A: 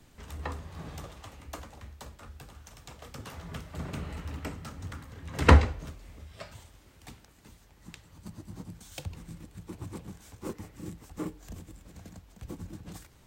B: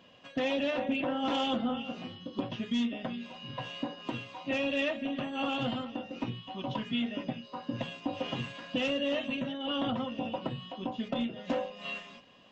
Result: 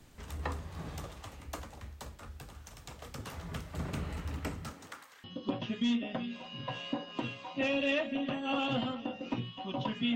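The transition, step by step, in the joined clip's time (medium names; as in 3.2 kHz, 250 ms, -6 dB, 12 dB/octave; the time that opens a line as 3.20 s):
A
4.71–5.24 s: high-pass 210 Hz -> 1.5 kHz
5.24 s: go over to B from 2.14 s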